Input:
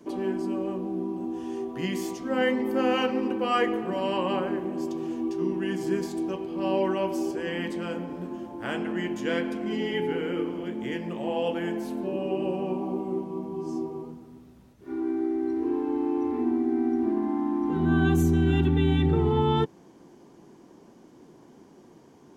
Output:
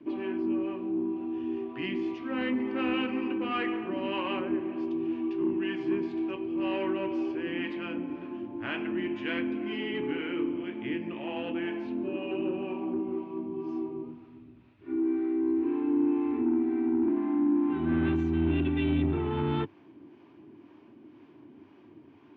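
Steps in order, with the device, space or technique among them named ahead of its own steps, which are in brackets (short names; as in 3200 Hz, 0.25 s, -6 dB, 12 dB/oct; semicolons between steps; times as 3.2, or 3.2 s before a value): guitar amplifier with harmonic tremolo (harmonic tremolo 2 Hz, depth 50%, crossover 550 Hz; soft clip -22 dBFS, distortion -15 dB; speaker cabinet 89–3400 Hz, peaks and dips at 100 Hz +9 dB, 180 Hz -9 dB, 300 Hz +8 dB, 490 Hz -9 dB, 770 Hz -5 dB, 2500 Hz +8 dB)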